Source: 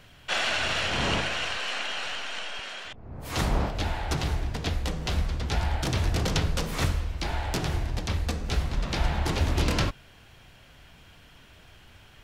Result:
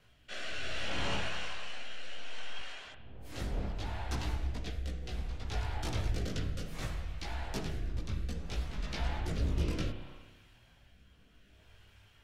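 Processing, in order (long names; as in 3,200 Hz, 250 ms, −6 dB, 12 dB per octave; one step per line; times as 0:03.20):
multi-voice chorus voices 4, 0.41 Hz, delay 18 ms, depth 2.4 ms
spring reverb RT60 1.5 s, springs 30/51 ms, chirp 60 ms, DRR 7.5 dB
rotating-speaker cabinet horn 0.65 Hz
level −6 dB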